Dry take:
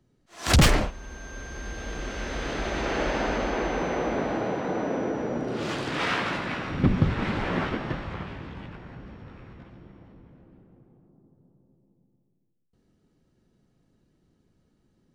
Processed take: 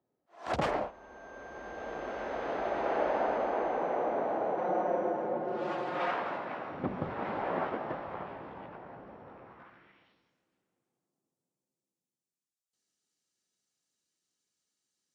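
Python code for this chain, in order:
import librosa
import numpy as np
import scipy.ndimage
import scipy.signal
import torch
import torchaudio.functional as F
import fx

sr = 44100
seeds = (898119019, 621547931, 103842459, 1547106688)

y = fx.comb(x, sr, ms=5.6, depth=0.85, at=(4.57, 6.11))
y = fx.rider(y, sr, range_db=5, speed_s=2.0)
y = fx.filter_sweep_bandpass(y, sr, from_hz=710.0, to_hz=7200.0, start_s=9.43, end_s=10.38, q=1.6)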